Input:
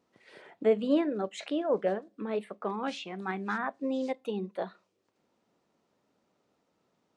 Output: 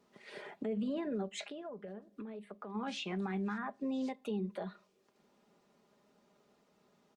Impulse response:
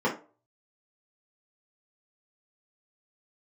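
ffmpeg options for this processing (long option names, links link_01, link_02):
-filter_complex "[0:a]aecho=1:1:4.9:0.55,acrossover=split=230[link_01][link_02];[link_02]acompressor=threshold=-42dB:ratio=2[link_03];[link_01][link_03]amix=inputs=2:normalize=0,alimiter=level_in=8.5dB:limit=-24dB:level=0:latency=1:release=80,volume=-8.5dB,asplit=3[link_04][link_05][link_06];[link_04]afade=type=out:start_time=1.41:duration=0.02[link_07];[link_05]acompressor=threshold=-47dB:ratio=4,afade=type=in:start_time=1.41:duration=0.02,afade=type=out:start_time=2.74:duration=0.02[link_08];[link_06]afade=type=in:start_time=2.74:duration=0.02[link_09];[link_07][link_08][link_09]amix=inputs=3:normalize=0,volume=3dB" -ar 48000 -c:a libopus -b:a 64k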